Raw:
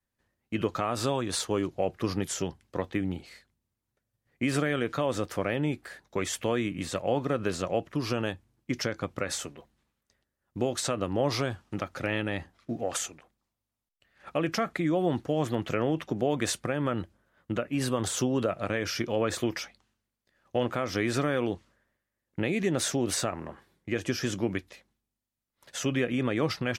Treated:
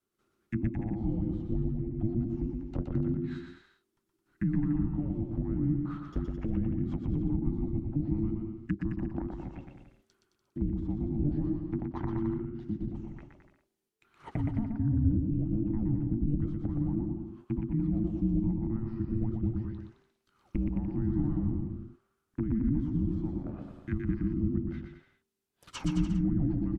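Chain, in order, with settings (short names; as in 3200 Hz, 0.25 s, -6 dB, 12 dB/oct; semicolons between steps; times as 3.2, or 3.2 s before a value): treble ducked by the level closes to 410 Hz, closed at -28.5 dBFS; vibrato 5 Hz 12 cents; frequency shift -440 Hz; on a send: bouncing-ball echo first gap 0.12 s, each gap 0.8×, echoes 5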